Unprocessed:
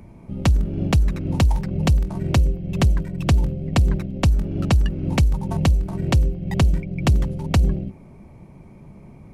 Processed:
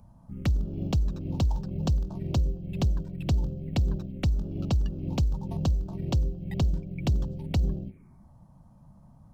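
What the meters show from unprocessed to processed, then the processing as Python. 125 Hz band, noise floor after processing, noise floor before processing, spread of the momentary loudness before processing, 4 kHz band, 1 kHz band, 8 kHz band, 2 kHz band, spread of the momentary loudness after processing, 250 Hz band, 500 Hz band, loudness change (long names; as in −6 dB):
−8.0 dB, −55 dBFS, −45 dBFS, 3 LU, −9.5 dB, −11.5 dB, −12.0 dB, −14.5 dB, 3 LU, −8.0 dB, −9.0 dB, −8.0 dB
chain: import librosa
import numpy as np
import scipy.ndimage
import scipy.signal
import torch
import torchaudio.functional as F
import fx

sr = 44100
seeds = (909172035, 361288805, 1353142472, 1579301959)

y = fx.quant_float(x, sr, bits=6)
y = fx.env_phaser(y, sr, low_hz=340.0, high_hz=2100.0, full_db=-18.0)
y = y * librosa.db_to_amplitude(-8.0)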